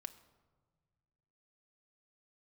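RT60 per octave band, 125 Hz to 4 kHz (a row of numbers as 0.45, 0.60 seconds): 2.5, 2.0, 1.6, 1.4, 0.95, 0.75 seconds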